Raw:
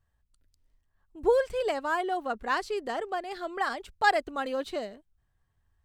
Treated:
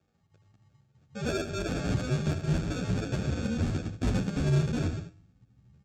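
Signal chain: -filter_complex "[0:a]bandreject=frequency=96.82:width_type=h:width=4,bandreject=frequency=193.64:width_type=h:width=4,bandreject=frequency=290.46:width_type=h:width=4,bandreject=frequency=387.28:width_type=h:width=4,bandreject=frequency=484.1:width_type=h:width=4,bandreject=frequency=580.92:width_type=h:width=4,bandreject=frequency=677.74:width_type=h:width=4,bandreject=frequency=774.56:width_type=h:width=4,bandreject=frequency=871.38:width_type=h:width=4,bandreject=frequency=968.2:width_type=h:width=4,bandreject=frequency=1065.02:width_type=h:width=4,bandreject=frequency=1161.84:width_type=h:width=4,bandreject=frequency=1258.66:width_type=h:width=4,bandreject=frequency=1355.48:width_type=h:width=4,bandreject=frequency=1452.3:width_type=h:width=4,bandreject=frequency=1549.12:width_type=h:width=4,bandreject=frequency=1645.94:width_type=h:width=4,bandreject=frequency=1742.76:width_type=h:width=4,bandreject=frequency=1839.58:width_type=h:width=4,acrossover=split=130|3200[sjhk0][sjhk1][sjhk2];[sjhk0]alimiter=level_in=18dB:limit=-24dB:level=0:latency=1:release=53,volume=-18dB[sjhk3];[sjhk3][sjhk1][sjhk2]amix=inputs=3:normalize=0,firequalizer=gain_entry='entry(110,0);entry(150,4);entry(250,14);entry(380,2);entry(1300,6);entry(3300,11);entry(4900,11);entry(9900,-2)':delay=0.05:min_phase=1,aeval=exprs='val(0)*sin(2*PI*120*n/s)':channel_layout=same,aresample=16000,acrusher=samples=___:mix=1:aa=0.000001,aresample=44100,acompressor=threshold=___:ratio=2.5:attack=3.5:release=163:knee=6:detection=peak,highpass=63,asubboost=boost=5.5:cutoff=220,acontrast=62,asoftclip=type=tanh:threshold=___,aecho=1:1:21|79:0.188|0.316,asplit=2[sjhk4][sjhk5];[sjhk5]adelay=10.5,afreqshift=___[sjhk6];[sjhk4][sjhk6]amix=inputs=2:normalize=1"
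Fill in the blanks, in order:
16, -32dB, -19.5dB, 0.84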